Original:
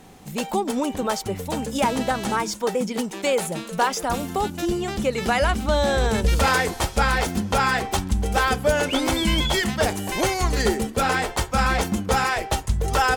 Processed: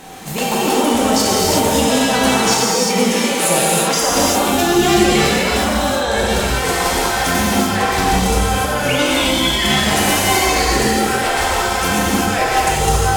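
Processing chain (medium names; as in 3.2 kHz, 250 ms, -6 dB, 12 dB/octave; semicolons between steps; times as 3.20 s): bass shelf 340 Hz -9.5 dB; compressor with a negative ratio -30 dBFS, ratio -1; gated-style reverb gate 410 ms flat, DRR -6.5 dB; trim +7 dB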